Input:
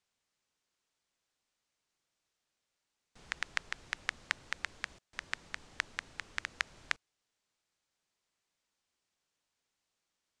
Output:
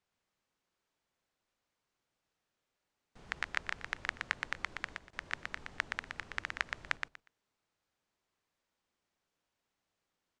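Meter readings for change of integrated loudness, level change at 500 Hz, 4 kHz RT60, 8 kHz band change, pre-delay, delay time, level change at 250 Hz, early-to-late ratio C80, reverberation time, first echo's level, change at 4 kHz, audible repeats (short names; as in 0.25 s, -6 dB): +0.5 dB, +3.5 dB, none, -5.0 dB, none, 0.12 s, +4.0 dB, none, none, -5.0 dB, -2.5 dB, 3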